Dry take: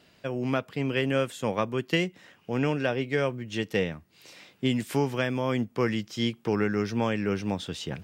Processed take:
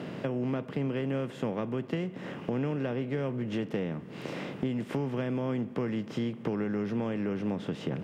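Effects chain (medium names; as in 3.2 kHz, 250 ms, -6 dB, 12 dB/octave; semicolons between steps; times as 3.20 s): spectral levelling over time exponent 0.6; high-pass 130 Hz 24 dB/octave; tilt EQ -3.5 dB/octave; compression 4:1, threshold -31 dBFS, peak gain reduction 14.5 dB; on a send: reverberation RT60 3.8 s, pre-delay 43 ms, DRR 18 dB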